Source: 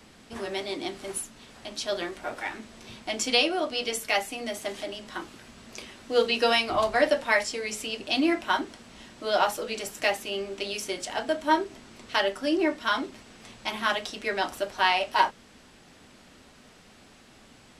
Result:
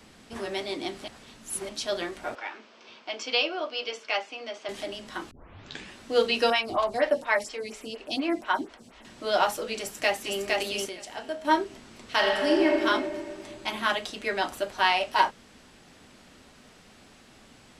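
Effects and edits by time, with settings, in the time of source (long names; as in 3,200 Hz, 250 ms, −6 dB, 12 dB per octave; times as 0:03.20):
0:01.04–0:01.69: reverse
0:02.35–0:04.69: loudspeaker in its box 480–4,900 Hz, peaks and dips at 740 Hz −4 dB, 1,900 Hz −6 dB, 3,900 Hz −6 dB
0:05.31: tape start 0.64 s
0:06.50–0:09.05: phaser with staggered stages 4.2 Hz
0:09.78–0:10.39: delay throw 460 ms, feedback 20%, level −2 dB
0:10.89–0:11.45: tuned comb filter 70 Hz, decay 1.5 s
0:12.12–0:12.82: thrown reverb, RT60 2.2 s, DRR 0 dB
0:13.46–0:14.75: notch filter 5,500 Hz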